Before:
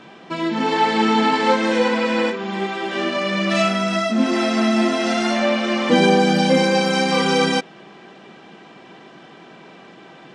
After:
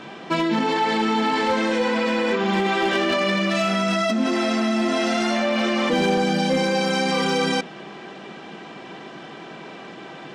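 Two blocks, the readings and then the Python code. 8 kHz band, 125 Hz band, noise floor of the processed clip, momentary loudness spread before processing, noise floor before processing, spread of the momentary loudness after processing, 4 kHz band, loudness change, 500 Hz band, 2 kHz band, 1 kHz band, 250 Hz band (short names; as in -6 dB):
-2.5 dB, -3.0 dB, -39 dBFS, 8 LU, -44 dBFS, 18 LU, -2.5 dB, -2.5 dB, -3.0 dB, -2.0 dB, -3.0 dB, -3.0 dB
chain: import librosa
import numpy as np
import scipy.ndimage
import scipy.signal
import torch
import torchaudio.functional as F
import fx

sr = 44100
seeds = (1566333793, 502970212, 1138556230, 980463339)

p1 = fx.hum_notches(x, sr, base_hz=60, count=4)
p2 = fx.over_compress(p1, sr, threshold_db=-24.0, ratio=-0.5)
p3 = p1 + (p2 * 10.0 ** (1.0 / 20.0))
p4 = np.clip(p3, -10.0 ** (-8.5 / 20.0), 10.0 ** (-8.5 / 20.0))
y = p4 * 10.0 ** (-5.5 / 20.0)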